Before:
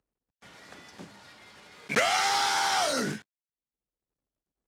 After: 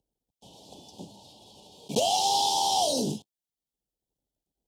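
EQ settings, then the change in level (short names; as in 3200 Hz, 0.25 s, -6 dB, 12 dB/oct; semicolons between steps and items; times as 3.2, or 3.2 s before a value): elliptic band-stop 870–3100 Hz, stop band 40 dB; +3.0 dB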